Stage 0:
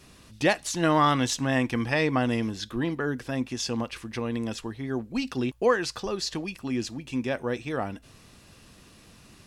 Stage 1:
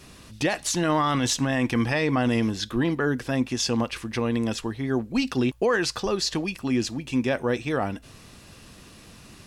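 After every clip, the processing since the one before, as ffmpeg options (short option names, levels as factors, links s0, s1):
-af "alimiter=limit=0.106:level=0:latency=1:release=12,volume=1.78"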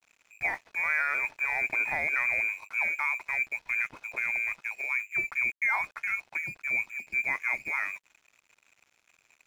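-af "lowpass=f=2200:t=q:w=0.5098,lowpass=f=2200:t=q:w=0.6013,lowpass=f=2200:t=q:w=0.9,lowpass=f=2200:t=q:w=2.563,afreqshift=-2600,aeval=exprs='sgn(val(0))*max(abs(val(0))-0.00501,0)':c=same,volume=0.562"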